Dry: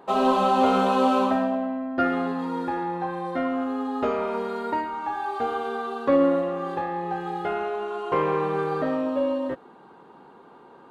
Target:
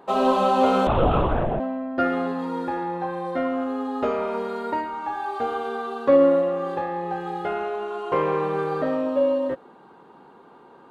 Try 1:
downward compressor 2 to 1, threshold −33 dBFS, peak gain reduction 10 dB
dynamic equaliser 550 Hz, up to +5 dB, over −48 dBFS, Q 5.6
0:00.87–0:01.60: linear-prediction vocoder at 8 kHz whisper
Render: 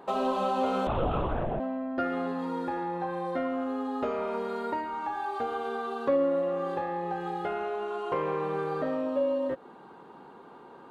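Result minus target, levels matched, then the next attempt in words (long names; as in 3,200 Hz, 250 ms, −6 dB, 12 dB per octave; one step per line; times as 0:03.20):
downward compressor: peak gain reduction +10 dB
dynamic equaliser 550 Hz, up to +5 dB, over −48 dBFS, Q 5.6
0:00.87–0:01.60: linear-prediction vocoder at 8 kHz whisper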